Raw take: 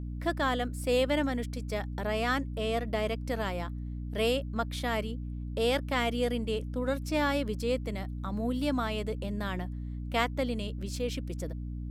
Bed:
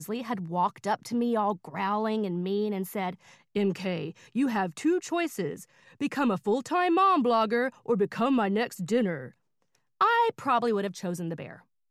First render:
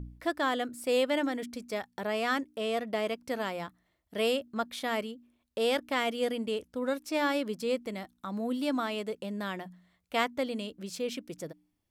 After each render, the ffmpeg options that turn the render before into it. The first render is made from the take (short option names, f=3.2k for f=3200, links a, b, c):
-af "bandreject=f=60:t=h:w=4,bandreject=f=120:t=h:w=4,bandreject=f=180:t=h:w=4,bandreject=f=240:t=h:w=4,bandreject=f=300:t=h:w=4"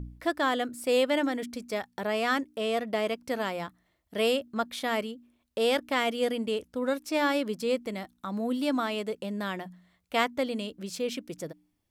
-af "volume=2.5dB"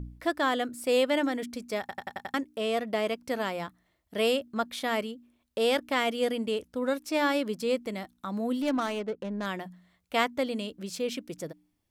-filter_complex "[0:a]asettb=1/sr,asplit=3[a][b][c];[a]atrim=end=8.624[d];[b]atrim=start=8.62:end=9.46,asetpts=PTS-STARTPTS,afade=t=in:d=0.004:c=qsin,afade=t=out:st=0.836:d=0.004:c=qsin,adynamicsmooth=sensitivity=5.5:basefreq=700[e];[c]atrim=start=9.456[f];[d][e]acrossfade=d=0.004:c1=hsin:c2=qsin[g];[g][f]acrossfade=d=0.004:c1=qsin:c2=hsin,asplit=7[h][i][j][k][l][m][n];[h]atrim=end=1.892[o];[i]atrim=start=1.798:end=1.892[p];[j]atrim=start=1.798:end=1.892[q];[k]atrim=start=1.798:end=1.892[r];[l]atrim=start=1.798:end=1.892[s];[m]atrim=start=1.798:end=1.892[t];[n]atrim=start=2.338[u];[o][p]acrossfade=d=0.004:c1=hsin:c2=hsin[v];[v][q]acrossfade=d=0.004:c1=hsin:c2=hsin[w];[w][r]acrossfade=d=0.004:c1=hsin:c2=hsin[x];[x][s]acrossfade=d=0.004:c1=hsin:c2=hsin[y];[y][t]acrossfade=d=0.004:c1=hsin:c2=hsin[z];[z][u]acrossfade=d=0.004:c1=hsin:c2=hsin"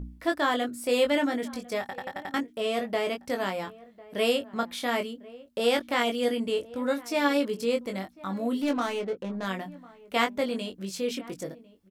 -filter_complex "[0:a]asplit=2[a][b];[b]adelay=21,volume=-4.5dB[c];[a][c]amix=inputs=2:normalize=0,asplit=2[d][e];[e]adelay=1050,volume=-20dB,highshelf=f=4k:g=-23.6[f];[d][f]amix=inputs=2:normalize=0"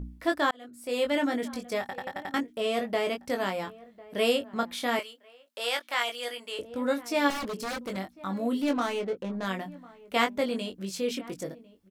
-filter_complex "[0:a]asettb=1/sr,asplit=3[a][b][c];[a]atrim=end=4.994[d];[b]atrim=start=4.99:end=6.59,asetpts=PTS-STARTPTS,afade=t=in:d=0.004:c=qsin,afade=t=out:st=1.596:d=0.004:c=qsin,highpass=880[e];[c]atrim=start=6.586[f];[d][e]acrossfade=d=0.004:c1=hsin:c2=qsin[g];[g][f]acrossfade=d=0.004:c1=qsin:c2=hsin,asettb=1/sr,asplit=3[h][i][j];[h]atrim=end=7.304[k];[i]atrim=start=7.3:end=7.97,asetpts=PTS-STARTPTS,afade=t=in:d=0.004:c=qsin,afade=t=out:st=0.666:d=0.004:c=qsin,aeval=exprs='0.0376*(abs(mod(val(0)/0.0376+3,4)-2)-1)':c=same[l];[j]atrim=start=7.966[m];[k][l]acrossfade=d=0.004:c1=hsin:c2=qsin[n];[n][m]acrossfade=d=0.004:c1=qsin:c2=hsin,asplit=2[o][p];[o]atrim=end=0.51,asetpts=PTS-STARTPTS,afade=t=out:st=0.506:d=0.004:c=hsin[q];[p]atrim=start=0.51,asetpts=PTS-STARTPTS,afade=t=in:d=0.81[r];[q][r]concat=n=2:v=0:a=1"